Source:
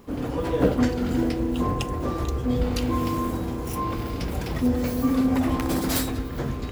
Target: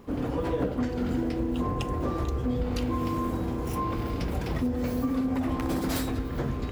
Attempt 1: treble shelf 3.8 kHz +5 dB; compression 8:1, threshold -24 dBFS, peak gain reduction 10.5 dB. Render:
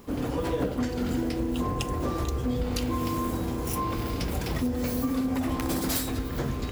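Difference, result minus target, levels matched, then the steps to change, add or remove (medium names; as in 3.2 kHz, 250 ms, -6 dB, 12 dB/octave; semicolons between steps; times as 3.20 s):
8 kHz band +7.5 dB
change: treble shelf 3.8 kHz -6.5 dB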